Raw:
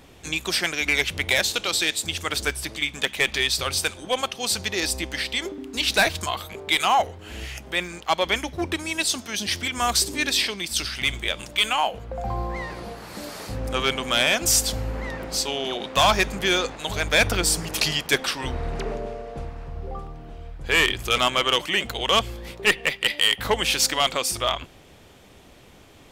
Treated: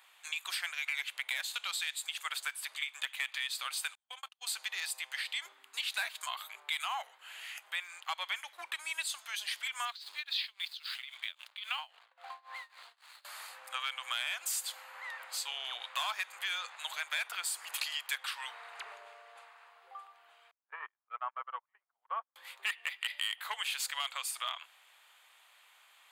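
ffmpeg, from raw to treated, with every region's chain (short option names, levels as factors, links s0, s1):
-filter_complex "[0:a]asettb=1/sr,asplit=3[s0][s1][s2];[s0]atrim=end=3.954[s3];[s1]atrim=start=3.95:end=4.47,asetpts=PTS-STARTPTS,afade=t=in:d=0.004:c=qsin,afade=t=out:st=0.516:d=0.004:c=qsin,agate=range=0.00794:threshold=0.0355:ratio=16:release=100:detection=peak,acompressor=threshold=0.0282:ratio=6:attack=3.2:release=140:knee=1:detection=peak[s4];[s2]atrim=start=4.466[s5];[s3][s4]acrossfade=d=0.004:c1=hsin:c2=qsin[s6];[s6][s5]acrossfade=d=0.004:c1=qsin:c2=hsin,asettb=1/sr,asplit=3[s7][s8][s9];[s7]atrim=end=9.854[s10];[s8]atrim=start=9.85:end=13.25,asetpts=PTS-STARTPTS,afade=t=in:d=0.004:c=qsin,afade=t=out:st=3.396:d=0.004:c=qsin,highshelf=f=6100:t=q:w=3:g=-13.5,aeval=exprs='sgn(val(0))*max(abs(val(0))-0.0112,0)':c=same,tremolo=f=3.7:d=0.94[s11];[s9]atrim=start=13.246[s12];[s10][s11]acrossfade=d=0.004:c1=hsin:c2=qsin[s13];[s13][s12]acrossfade=d=0.004:c1=qsin:c2=hsin,asettb=1/sr,asplit=3[s14][s15][s16];[s14]atrim=end=20.514[s17];[s15]atrim=start=20.51:end=22.36,asetpts=PTS-STARTPTS,afade=t=in:d=0.004:c=qsin,afade=t=out:st=1.846:d=0.004:c=qsin,lowpass=f=1300:w=0.5412,lowpass=f=1300:w=1.3066,agate=range=0.0126:threshold=0.0562:ratio=16:release=100:detection=peak[s18];[s16]atrim=start=22.356[s19];[s17][s18]acrossfade=d=0.004:c1=hsin:c2=qsin[s20];[s20][s19]acrossfade=d=0.004:c1=qsin:c2=hsin,highpass=f=980:w=0.5412,highpass=f=980:w=1.3066,equalizer=f=5600:w=3.8:g=-13,acompressor=threshold=0.0398:ratio=3,volume=0.501"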